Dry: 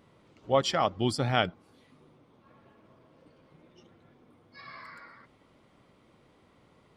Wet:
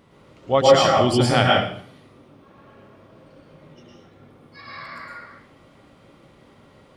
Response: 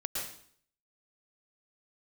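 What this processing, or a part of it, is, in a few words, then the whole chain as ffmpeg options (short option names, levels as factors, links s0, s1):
bathroom: -filter_complex "[1:a]atrim=start_sample=2205[s0];[0:a][s0]afir=irnorm=-1:irlink=0,volume=2.24"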